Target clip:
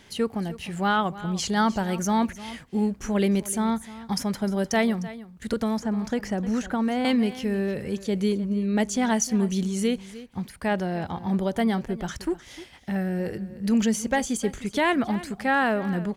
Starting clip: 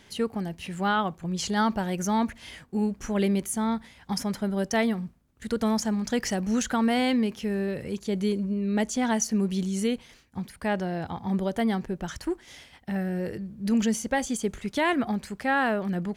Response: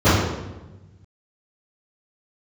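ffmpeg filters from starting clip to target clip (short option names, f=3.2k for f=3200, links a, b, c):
-filter_complex "[0:a]aecho=1:1:305:0.15,asettb=1/sr,asplit=3[a][b][c];[a]atrim=end=5.534[d];[b]atrim=start=5.53:end=7.05,asetpts=PTS-STARTPTS,afade=t=in:d=0.004:c=qsin,afade=t=out:st=1.516:d=0.004:c=qsin,acrossover=split=960|2300[e][f][g];[e]acompressor=threshold=-24dB:ratio=4[h];[f]acompressor=threshold=-41dB:ratio=4[i];[g]acompressor=threshold=-47dB:ratio=4[j];[h][i][j]amix=inputs=3:normalize=0[k];[c]atrim=start=7.046[l];[d][k]acrossfade=d=0.004:c1=hsin:c2=qsin[m];[m][l]acrossfade=d=0.004:c1=qsin:c2=hsin,volume=2dB"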